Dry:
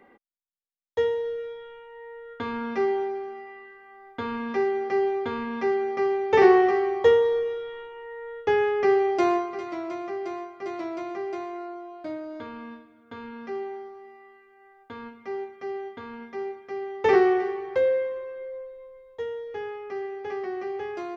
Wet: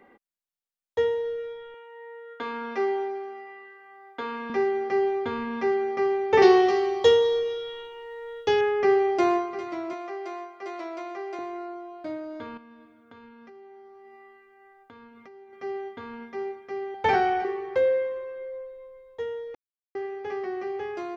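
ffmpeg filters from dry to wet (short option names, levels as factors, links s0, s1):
-filter_complex "[0:a]asettb=1/sr,asplit=3[s0][s1][s2];[s0]atrim=end=1.744[s3];[s1]atrim=start=1.74:end=4.5,asetpts=PTS-STARTPTS,afade=t=in:d=0.004:c=qsin,afade=t=out:st=2.756:d=0.004:c=qsin,highpass=330[s4];[s2]atrim=start=4.496[s5];[s3][s4]acrossfade=d=0.004:c1=hsin:c2=qsin[s6];[s6][s5]acrossfade=d=0.004:c1=qsin:c2=hsin,asettb=1/sr,asplit=3[s7][s8][s9];[s7]atrim=end=6.424[s10];[s8]atrim=start=6.42:end=8.61,asetpts=PTS-STARTPTS,afade=t=in:d=0.004:c=qsin,afade=t=out:st=2.186:d=0.004:c=qsin,highshelf=f=2700:t=q:w=1.5:g=9.5[s11];[s9]atrim=start=8.606[s12];[s10][s11]acrossfade=d=0.004:c1=hsin:c2=qsin[s13];[s13][s12]acrossfade=d=0.004:c1=qsin:c2=hsin,asettb=1/sr,asplit=3[s14][s15][s16];[s14]atrim=end=9.934[s17];[s15]atrim=start=9.93:end=11.39,asetpts=PTS-STARTPTS,afade=t=in:d=0.004:c=qsin,afade=t=out:st=1.456:d=0.004:c=qsin,highpass=430[s18];[s16]atrim=start=11.386[s19];[s17][s18]acrossfade=d=0.004:c1=hsin:c2=qsin[s20];[s20][s19]acrossfade=d=0.004:c1=qsin:c2=hsin,asettb=1/sr,asplit=3[s21][s22][s23];[s21]atrim=end=12.574[s24];[s22]atrim=start=12.57:end=15.53,asetpts=PTS-STARTPTS,afade=t=in:d=0.004:c=qsin,afade=t=out:st=2.956:d=0.004:c=qsin,acompressor=threshold=0.00562:ratio=12:attack=3.2:release=140:knee=1:detection=peak[s25];[s23]atrim=start=15.526[s26];[s24][s25]acrossfade=d=0.004:c1=hsin:c2=qsin[s27];[s27][s26]acrossfade=d=0.004:c1=qsin:c2=hsin,asettb=1/sr,asplit=3[s28][s29][s30];[s28]atrim=end=16.944[s31];[s29]atrim=start=16.94:end=17.45,asetpts=PTS-STARTPTS,afade=t=in:d=0.004:c=qsin,afade=t=out:st=0.506:d=0.004:c=qsin,aecho=1:1:1.3:0.69,atrim=end_sample=22491[s32];[s30]atrim=start=17.446[s33];[s31][s32]acrossfade=d=0.004:c1=hsin:c2=qsin[s34];[s34][s33]acrossfade=d=0.004:c1=qsin:c2=hsin,asplit=3[s35][s36][s37];[s35]atrim=end=19.55,asetpts=PTS-STARTPTS,afade=t=out:st=19.546:d=0.004:c=hsin[s38];[s36]atrim=start=19.55:end=19.95,asetpts=PTS-STARTPTS,volume=0[s39];[s37]atrim=start=19.95,asetpts=PTS-STARTPTS,afade=t=in:d=0.004:c=hsin[s40];[s38][s39][s40]concat=n=3:v=0:a=1"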